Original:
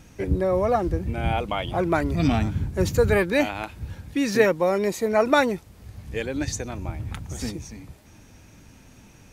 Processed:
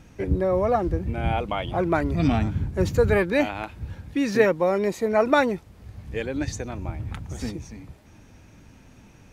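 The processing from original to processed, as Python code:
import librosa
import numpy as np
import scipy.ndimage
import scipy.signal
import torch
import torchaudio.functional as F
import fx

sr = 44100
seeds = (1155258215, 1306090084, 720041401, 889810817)

y = fx.high_shelf(x, sr, hz=4600.0, db=-8.5)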